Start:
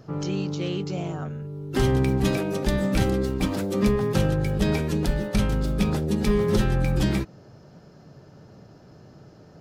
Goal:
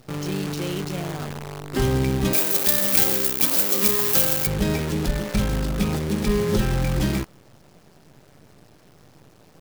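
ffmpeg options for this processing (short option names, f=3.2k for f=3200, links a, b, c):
-filter_complex "[0:a]acrusher=bits=6:dc=4:mix=0:aa=0.000001,asettb=1/sr,asplit=3[a][b][c];[a]atrim=end=2.334[d];[b]atrim=start=2.33:end=4.47,asetpts=PTS-STARTPTS,afade=t=in:d=0.004:c=qsin,afade=t=out:st=2.136:d=0.004:c=qsin,aemphasis=mode=production:type=riaa[e];[c]atrim=start=4.466[f];[d][e]acrossfade=d=0.004:c1=hsin:c2=qsin[g];[g][f]acrossfade=d=0.004:c1=qsin:c2=hsin"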